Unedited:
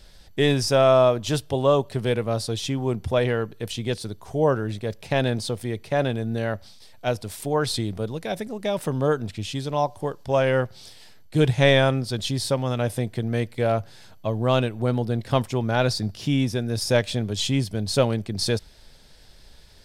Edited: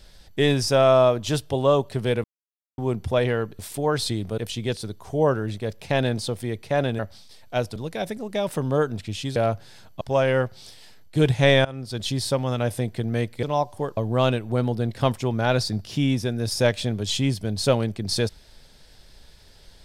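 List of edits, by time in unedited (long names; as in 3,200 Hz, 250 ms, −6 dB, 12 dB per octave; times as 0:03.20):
0:02.24–0:02.78: silence
0:06.20–0:06.50: remove
0:07.27–0:08.06: move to 0:03.59
0:09.66–0:10.20: swap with 0:13.62–0:14.27
0:11.84–0:12.27: fade in, from −23 dB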